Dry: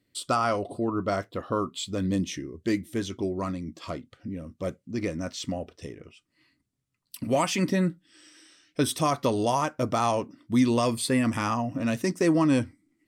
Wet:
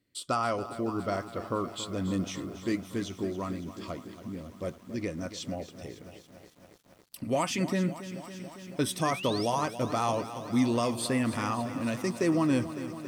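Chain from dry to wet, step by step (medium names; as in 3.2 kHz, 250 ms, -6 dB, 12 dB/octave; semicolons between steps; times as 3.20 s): painted sound rise, 9.02–9.46 s, 1.5–5.8 kHz -36 dBFS; bit-crushed delay 278 ms, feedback 80%, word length 8-bit, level -13 dB; trim -4 dB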